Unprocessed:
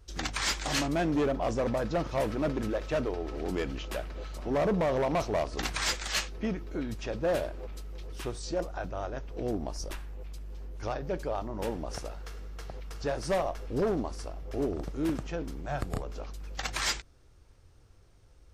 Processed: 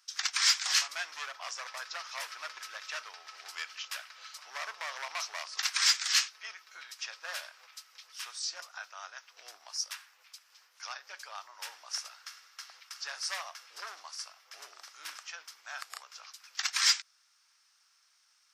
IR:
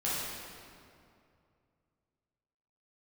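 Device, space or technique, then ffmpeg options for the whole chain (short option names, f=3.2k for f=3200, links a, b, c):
headphones lying on a table: -filter_complex "[0:a]asettb=1/sr,asplit=3[a][b][c];[a]atrim=end=1.014[d];[b]atrim=start=1.01:end=1.88,asetpts=PTS-STARTPTS,afade=t=in:d=0.004:c=qsin,afade=t=out:st=0.866:d=0.004:c=qsin,highpass=300[e];[c]atrim=start=1.876[f];[d][e]acrossfade=d=0.004:c1=hsin:c2=qsin[g];[g][f]acrossfade=d=0.004:c1=qsin:c2=hsin,highpass=f=1.2k:w=0.5412,highpass=f=1.2k:w=1.3066,equalizer=f=5.3k:t=o:w=0.54:g=8.5,volume=1.5dB"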